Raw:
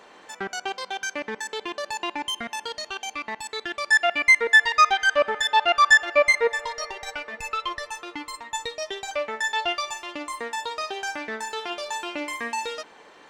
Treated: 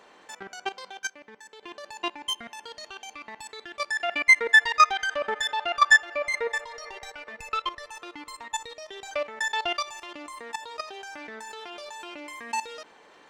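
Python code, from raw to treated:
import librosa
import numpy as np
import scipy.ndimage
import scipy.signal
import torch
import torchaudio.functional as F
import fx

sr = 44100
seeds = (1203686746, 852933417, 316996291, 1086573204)

y = fx.level_steps(x, sr, step_db=14)
y = fx.upward_expand(y, sr, threshold_db=-47.0, expansion=1.5, at=(0.99, 1.63))
y = y * librosa.db_to_amplitude(1.5)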